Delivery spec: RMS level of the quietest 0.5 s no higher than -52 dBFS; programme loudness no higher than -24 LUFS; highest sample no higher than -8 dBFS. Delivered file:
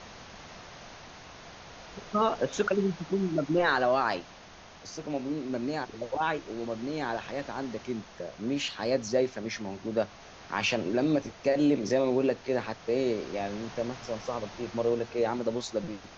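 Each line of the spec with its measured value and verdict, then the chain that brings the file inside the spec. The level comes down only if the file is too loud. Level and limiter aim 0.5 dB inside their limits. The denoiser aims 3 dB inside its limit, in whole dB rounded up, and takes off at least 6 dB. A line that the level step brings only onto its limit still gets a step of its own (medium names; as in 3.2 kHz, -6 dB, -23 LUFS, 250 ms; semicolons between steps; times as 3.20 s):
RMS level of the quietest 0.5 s -50 dBFS: fail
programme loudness -30.5 LUFS: pass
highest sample -14.0 dBFS: pass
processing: noise reduction 6 dB, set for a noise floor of -50 dBFS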